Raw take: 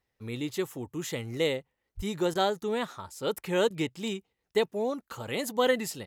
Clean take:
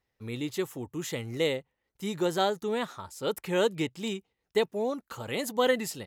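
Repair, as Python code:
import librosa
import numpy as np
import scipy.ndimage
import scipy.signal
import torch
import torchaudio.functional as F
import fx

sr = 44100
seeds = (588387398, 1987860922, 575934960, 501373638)

y = fx.fix_deplosive(x, sr, at_s=(1.96,))
y = fx.fix_interpolate(y, sr, at_s=(2.34, 3.69), length_ms=12.0)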